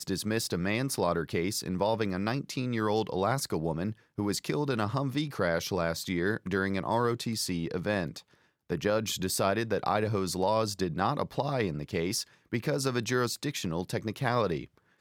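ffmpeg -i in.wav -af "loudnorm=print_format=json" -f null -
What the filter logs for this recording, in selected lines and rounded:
"input_i" : "-30.8",
"input_tp" : "-11.9",
"input_lra" : "1.4",
"input_thresh" : "-40.9",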